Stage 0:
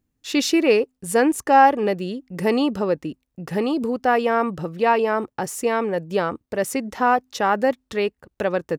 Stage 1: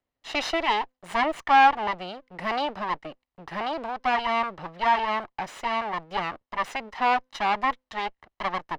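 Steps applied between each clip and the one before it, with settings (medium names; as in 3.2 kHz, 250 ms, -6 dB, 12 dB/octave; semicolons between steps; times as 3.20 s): comb filter that takes the minimum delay 1 ms; three-band isolator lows -15 dB, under 440 Hz, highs -23 dB, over 4.7 kHz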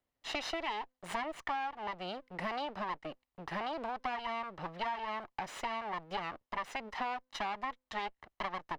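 compression 10:1, threshold -32 dBFS, peak gain reduction 19.5 dB; trim -2 dB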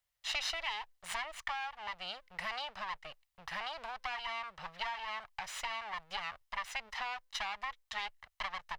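amplifier tone stack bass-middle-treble 10-0-10; trim +6.5 dB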